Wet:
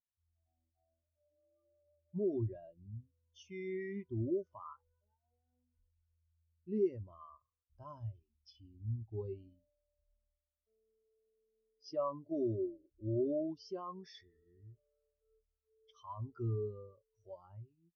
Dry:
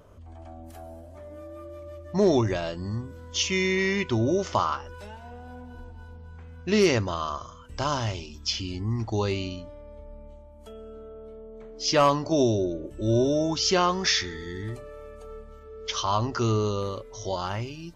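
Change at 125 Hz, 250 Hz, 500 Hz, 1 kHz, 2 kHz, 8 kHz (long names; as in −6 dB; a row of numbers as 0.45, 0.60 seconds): −13.5 dB, −14.0 dB, −13.5 dB, −22.0 dB, −28.0 dB, can't be measured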